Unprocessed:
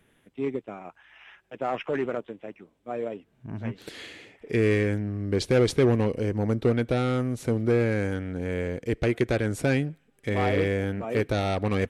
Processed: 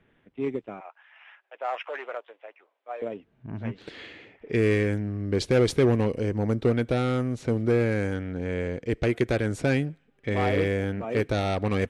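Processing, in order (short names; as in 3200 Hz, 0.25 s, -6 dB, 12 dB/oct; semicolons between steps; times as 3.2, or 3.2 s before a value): 0.8–3.02 HPF 580 Hz 24 dB/oct; low-pass opened by the level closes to 2700 Hz, open at -20 dBFS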